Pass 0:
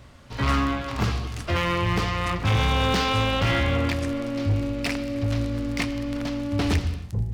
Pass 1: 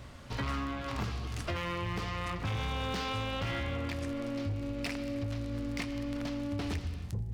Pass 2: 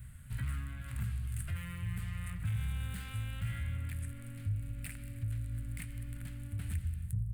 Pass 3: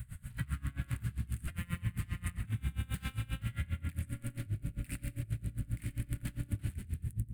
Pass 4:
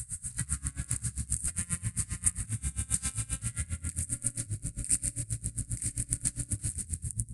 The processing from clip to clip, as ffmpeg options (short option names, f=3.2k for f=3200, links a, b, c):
-af "acompressor=threshold=-33dB:ratio=6"
-af "firequalizer=gain_entry='entry(140,0);entry(330,-26);entry(1100,-22);entry(1500,-8);entry(5600,-23);entry(8500,6)':delay=0.05:min_phase=1,volume=1dB"
-filter_complex "[0:a]acompressor=threshold=-38dB:ratio=6,asplit=2[a][b];[b]asplit=8[c][d][e][f][g][h][i][j];[c]adelay=90,afreqshift=34,volume=-11dB[k];[d]adelay=180,afreqshift=68,volume=-15dB[l];[e]adelay=270,afreqshift=102,volume=-19dB[m];[f]adelay=360,afreqshift=136,volume=-23dB[n];[g]adelay=450,afreqshift=170,volume=-27.1dB[o];[h]adelay=540,afreqshift=204,volume=-31.1dB[p];[i]adelay=630,afreqshift=238,volume=-35.1dB[q];[j]adelay=720,afreqshift=272,volume=-39.1dB[r];[k][l][m][n][o][p][q][r]amix=inputs=8:normalize=0[s];[a][s]amix=inputs=2:normalize=0,aeval=exprs='val(0)*pow(10,-24*(0.5-0.5*cos(2*PI*7.5*n/s))/20)':c=same,volume=9.5dB"
-af "aexciter=amount=15.9:drive=2.6:freq=4.8k,aresample=22050,aresample=44100"